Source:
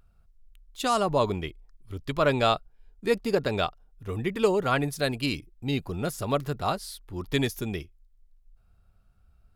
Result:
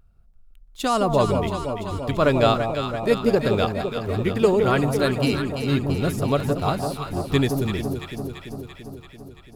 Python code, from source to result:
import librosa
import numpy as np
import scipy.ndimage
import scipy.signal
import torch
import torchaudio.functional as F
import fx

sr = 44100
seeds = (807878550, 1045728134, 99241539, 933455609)

p1 = np.where(np.abs(x) >= 10.0 ** (-36.5 / 20.0), x, 0.0)
p2 = x + (p1 * 10.0 ** (-8.0 / 20.0))
p3 = fx.low_shelf(p2, sr, hz=490.0, db=5.5)
p4 = fx.echo_alternate(p3, sr, ms=169, hz=930.0, feedback_pct=81, wet_db=-5.0)
y = p4 * 10.0 ** (-1.5 / 20.0)